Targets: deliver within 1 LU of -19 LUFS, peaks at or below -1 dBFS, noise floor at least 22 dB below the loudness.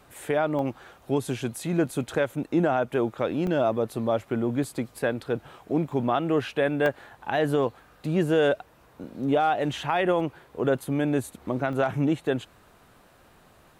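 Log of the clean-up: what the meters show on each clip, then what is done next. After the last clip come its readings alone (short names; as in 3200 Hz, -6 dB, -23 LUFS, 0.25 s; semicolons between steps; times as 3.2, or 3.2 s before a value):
dropouts 7; longest dropout 1.1 ms; loudness -26.5 LUFS; peak -11.0 dBFS; loudness target -19.0 LUFS
-> interpolate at 0.59/3.47/4.64/5.92/6.86/10.2/11.73, 1.1 ms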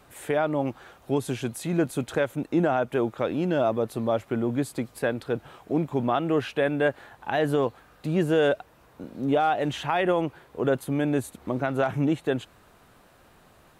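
dropouts 0; loudness -26.5 LUFS; peak -11.0 dBFS; loudness target -19.0 LUFS
-> gain +7.5 dB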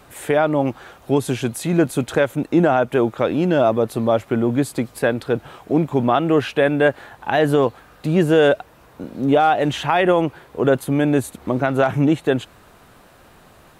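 loudness -19.0 LUFS; peak -3.5 dBFS; noise floor -49 dBFS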